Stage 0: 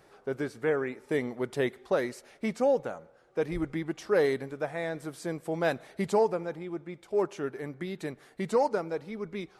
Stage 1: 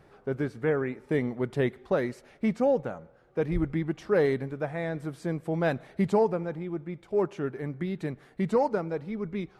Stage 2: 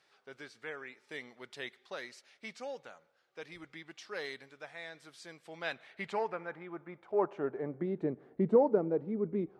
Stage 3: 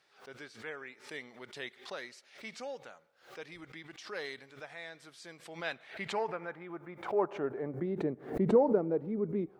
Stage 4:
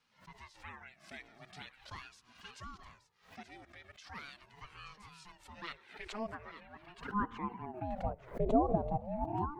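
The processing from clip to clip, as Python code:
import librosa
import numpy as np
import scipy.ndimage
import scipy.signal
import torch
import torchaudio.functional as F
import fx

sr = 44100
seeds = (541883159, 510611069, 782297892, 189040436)

y1 = fx.bass_treble(x, sr, bass_db=9, treble_db=-8)
y2 = fx.filter_sweep_bandpass(y1, sr, from_hz=4600.0, to_hz=360.0, start_s=5.34, end_s=8.2, q=1.2)
y2 = y2 * 10.0 ** (2.5 / 20.0)
y3 = fx.pre_swell(y2, sr, db_per_s=130.0)
y4 = y3 + 10.0 ** (-11.5 / 20.0) * np.pad(y3, (int(877 * sr / 1000.0), 0))[:len(y3)]
y4 = fx.env_flanger(y4, sr, rest_ms=2.7, full_db=-27.5)
y4 = fx.ring_lfo(y4, sr, carrier_hz=420.0, swing_pct=50, hz=0.41)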